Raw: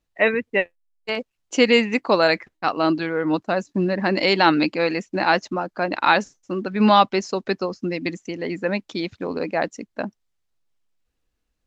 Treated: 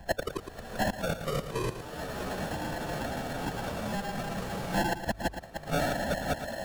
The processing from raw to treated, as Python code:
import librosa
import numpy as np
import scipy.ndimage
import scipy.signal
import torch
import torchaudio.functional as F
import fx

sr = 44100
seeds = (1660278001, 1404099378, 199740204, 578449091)

y = fx.low_shelf(x, sr, hz=400.0, db=-10.0)
y = fx.rev_plate(y, sr, seeds[0], rt60_s=4.7, hf_ratio=0.85, predelay_ms=120, drr_db=0.0)
y = fx.sample_hold(y, sr, seeds[1], rate_hz=1200.0, jitter_pct=0)
y = fx.high_shelf(y, sr, hz=3800.0, db=-3.5)
y = y + 0.9 * np.pad(y, (int(1.2 * sr / 1000.0), 0))[:len(y)]
y = fx.gate_flip(y, sr, shuts_db=-17.0, range_db=-38)
y = fx.echo_pitch(y, sr, ms=102, semitones=-3, count=3, db_per_echo=-3.0)
y = fx.stretch_vocoder(y, sr, factor=0.57)
y = fx.hum_notches(y, sr, base_hz=50, count=2)
y = y + 10.0 ** (-11.5 / 20.0) * np.pad(y, (int(112 * sr / 1000.0), 0))[:len(y)]
y = fx.band_squash(y, sr, depth_pct=100)
y = F.gain(torch.from_numpy(y), 5.0).numpy()